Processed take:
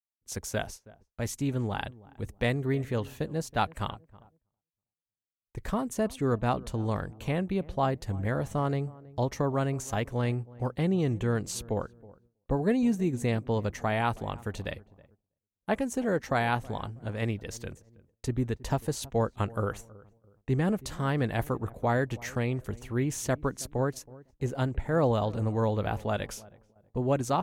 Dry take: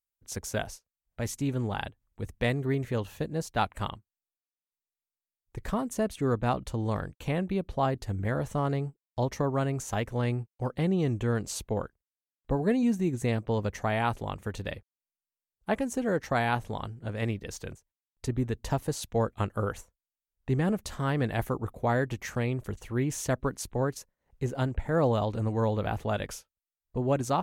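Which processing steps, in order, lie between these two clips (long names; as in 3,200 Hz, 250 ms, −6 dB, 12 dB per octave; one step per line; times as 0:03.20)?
feedback echo with a low-pass in the loop 322 ms, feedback 35%, low-pass 920 Hz, level −20 dB
noise gate with hold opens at −50 dBFS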